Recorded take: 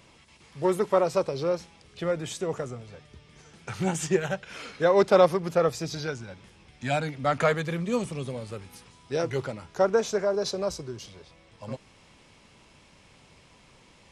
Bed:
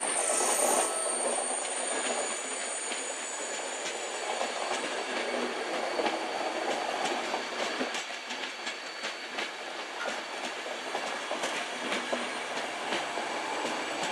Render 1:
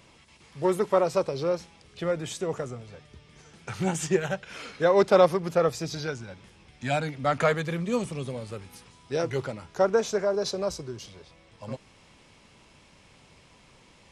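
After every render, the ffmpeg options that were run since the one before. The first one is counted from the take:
-af anull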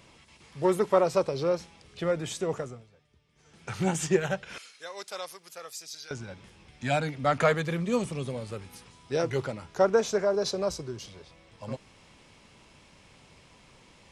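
-filter_complex "[0:a]asettb=1/sr,asplit=3[a][b][c];[a]atrim=end=4.584[d];[b]atrim=start=4.58:end=6.11,asetpts=PTS-STARTPTS,afade=t=in:d=0.004:c=qsin,afade=t=out:st=1.526:d=0.004:c=qsin,aderivative[e];[c]atrim=start=6.106[f];[d][e]acrossfade=d=0.004:c1=hsin:c2=qsin[g];[g][f]acrossfade=d=0.004:c1=qsin:c2=hsin,asplit=3[h][i][j];[h]atrim=end=2.9,asetpts=PTS-STARTPTS,afade=t=out:st=2.53:d=0.37:silence=0.16788[k];[i]atrim=start=2.9:end=3.35,asetpts=PTS-STARTPTS,volume=-15.5dB[l];[j]atrim=start=3.35,asetpts=PTS-STARTPTS,afade=t=in:d=0.37:silence=0.16788[m];[k][l][m]concat=n=3:v=0:a=1"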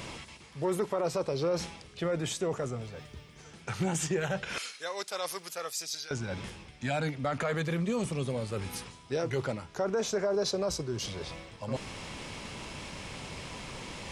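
-af "areverse,acompressor=mode=upward:threshold=-28dB:ratio=2.5,areverse,alimiter=limit=-21.5dB:level=0:latency=1:release=29"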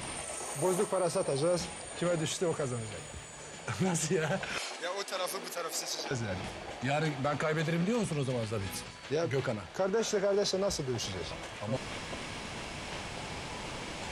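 -filter_complex "[1:a]volume=-12dB[a];[0:a][a]amix=inputs=2:normalize=0"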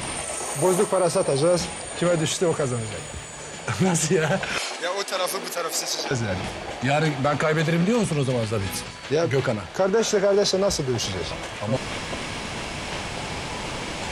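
-af "volume=9.5dB"

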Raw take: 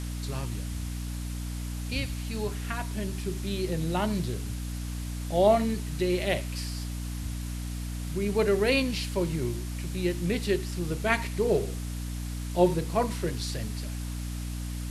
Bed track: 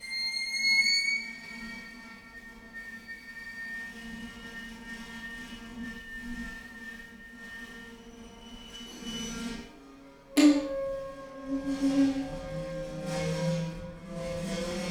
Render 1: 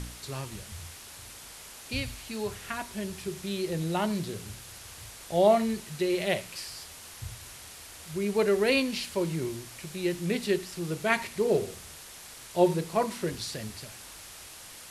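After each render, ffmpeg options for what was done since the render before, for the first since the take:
-af "bandreject=f=60:t=h:w=4,bandreject=f=120:t=h:w=4,bandreject=f=180:t=h:w=4,bandreject=f=240:t=h:w=4,bandreject=f=300:t=h:w=4"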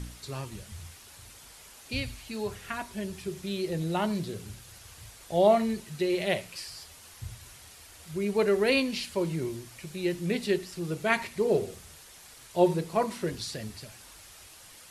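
-af "afftdn=nr=6:nf=-47"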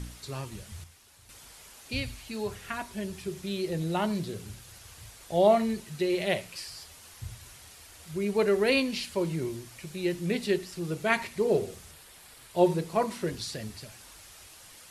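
-filter_complex "[0:a]asettb=1/sr,asplit=3[a][b][c];[a]atrim=end=11.914[d];[b]atrim=start=11.91:end=12.57,asetpts=PTS-STARTPTS,afade=t=in:d=0.004:c=qsin,afade=t=out:st=0.656:d=0.004:c=qsin,equalizer=f=6.2k:t=o:w=0.45:g=-6.5[e];[c]atrim=start=12.566[f];[d][e]acrossfade=d=0.004:c1=hsin:c2=qsin[g];[g][f]acrossfade=d=0.004:c1=qsin:c2=hsin,asplit=3[h][i][j];[h]atrim=end=0.842[k];[i]atrim=start=0.838:end=1.292,asetpts=PTS-STARTPTS,volume=-7.5dB[l];[j]atrim=start=1.288[m];[k][l]acrossfade=d=0.004:c1=hsin:c2=hsin[n];[n][m]acrossfade=d=0.004:c1=hsin:c2=hsin"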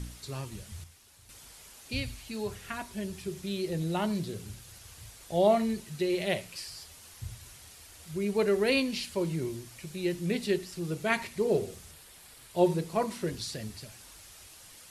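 -af "equalizer=f=1.1k:w=0.39:g=-3"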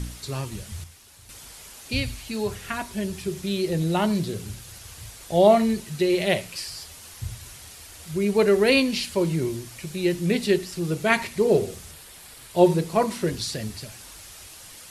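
-af "volume=7.5dB"

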